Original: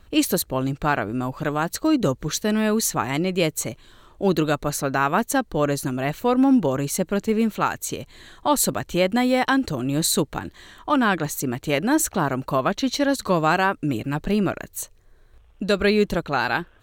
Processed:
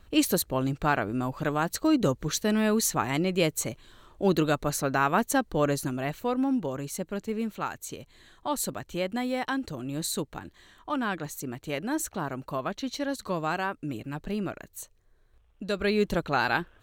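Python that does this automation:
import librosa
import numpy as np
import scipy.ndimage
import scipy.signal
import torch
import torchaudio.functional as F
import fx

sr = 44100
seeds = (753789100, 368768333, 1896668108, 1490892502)

y = fx.gain(x, sr, db=fx.line((5.7, -3.5), (6.53, -10.0), (15.66, -10.0), (16.21, -3.0)))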